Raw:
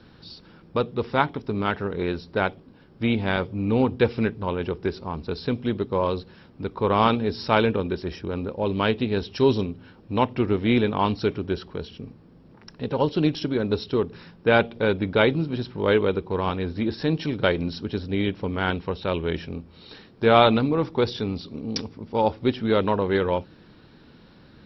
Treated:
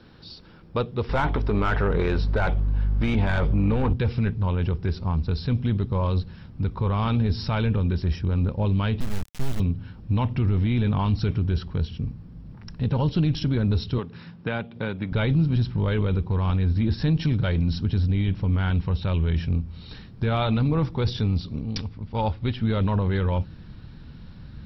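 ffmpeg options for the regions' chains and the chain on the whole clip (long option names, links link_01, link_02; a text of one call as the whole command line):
ffmpeg -i in.wav -filter_complex "[0:a]asettb=1/sr,asplit=3[link_01][link_02][link_03];[link_01]atrim=end=1.094[link_04];[link_02]atrim=start=1.09:end=3.93,asetpts=PTS-STARTPTS,afade=type=in:duration=0.004:curve=qsin,afade=type=out:start_time=2.836:duration=0.004:curve=qsin,asplit=2[link_05][link_06];[link_06]highpass=frequency=720:poles=1,volume=21dB,asoftclip=type=tanh:threshold=-4.5dB[link_07];[link_05][link_07]amix=inputs=2:normalize=0,lowpass=frequency=1300:poles=1,volume=-6dB,aeval=exprs='val(0)+0.02*(sin(2*PI*50*n/s)+sin(2*PI*2*50*n/s)/2+sin(2*PI*3*50*n/s)/3+sin(2*PI*4*50*n/s)/4+sin(2*PI*5*50*n/s)/5)':channel_layout=same[link_08];[link_03]atrim=start=3.926[link_09];[link_04][link_08]acrossfade=duration=0.004:curve1=hsin:curve2=qsin[link_10];[link_10][link_09]acrossfade=duration=0.004:curve1=qsin:curve2=hsin,asettb=1/sr,asplit=3[link_11][link_12][link_13];[link_11]atrim=end=9.004[link_14];[link_12]atrim=start=9:end=9.6,asetpts=PTS-STARTPTS,afade=type=in:duration=0.004:curve=qsin,afade=type=out:start_time=0.596:duration=0.004:curve=qsin,acompressor=threshold=-32dB:ratio=2.5:attack=3.2:release=140:knee=1:detection=peak,lowpass=2800,acrusher=bits=3:dc=4:mix=0:aa=0.000001[link_15];[link_13]atrim=start=9.596[link_16];[link_14][link_15]acrossfade=duration=0.004:curve1=hsin:curve2=qsin[link_17];[link_17][link_16]acrossfade=duration=0.004:curve1=qsin:curve2=hsin,asettb=1/sr,asplit=3[link_18][link_19][link_20];[link_18]atrim=end=13.984[link_21];[link_19]atrim=start=13.98:end=15.12,asetpts=PTS-STARTPTS,afade=type=in:duration=0.004:curve=qsin,afade=type=out:start_time=1.136:duration=0.004:curve=qsin,acrossover=split=600|2500[link_22][link_23][link_24];[link_22]acompressor=threshold=-30dB:ratio=4[link_25];[link_23]acompressor=threshold=-31dB:ratio=4[link_26];[link_24]acompressor=threshold=-44dB:ratio=4[link_27];[link_25][link_26][link_27]amix=inputs=3:normalize=0,highpass=160,lowpass=5100[link_28];[link_20]atrim=start=15.116[link_29];[link_21][link_28]acrossfade=duration=0.004:curve1=hsin:curve2=qsin[link_30];[link_30][link_29]acrossfade=duration=0.004:curve1=qsin:curve2=hsin,asettb=1/sr,asplit=3[link_31][link_32][link_33];[link_31]atrim=end=21.634[link_34];[link_32]atrim=start=21.63:end=22.62,asetpts=PTS-STARTPTS,afade=type=in:duration=0.004:curve=qsin,afade=type=out:start_time=0.986:duration=0.004:curve=qsin,lowpass=frequency=4800:width=0.5412,lowpass=frequency=4800:width=1.3066,equalizer=frequency=210:width=0.33:gain=-5.5[link_35];[link_33]atrim=start=22.616[link_36];[link_34][link_35]acrossfade=duration=0.004:curve1=hsin:curve2=qsin[link_37];[link_37][link_36]acrossfade=duration=0.004:curve1=qsin:curve2=hsin,asubboost=boost=8.5:cutoff=130,alimiter=limit=-14.5dB:level=0:latency=1:release=13" out.wav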